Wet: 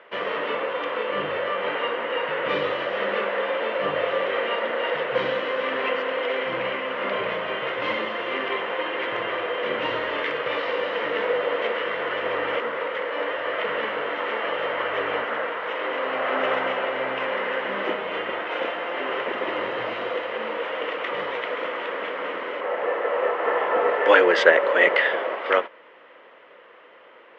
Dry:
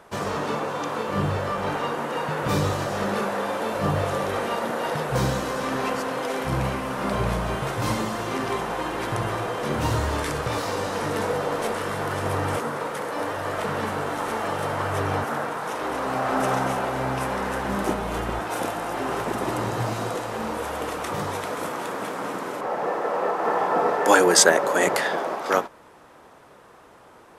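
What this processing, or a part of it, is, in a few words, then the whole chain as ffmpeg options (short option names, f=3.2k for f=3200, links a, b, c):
phone earpiece: -af "highpass=400,equalizer=f=520:t=q:w=4:g=7,equalizer=f=790:t=q:w=4:g=-7,equalizer=f=2k:t=q:w=4:g=9,equalizer=f=3k:t=q:w=4:g=10,lowpass=f=3.1k:w=0.5412,lowpass=f=3.1k:w=1.3066"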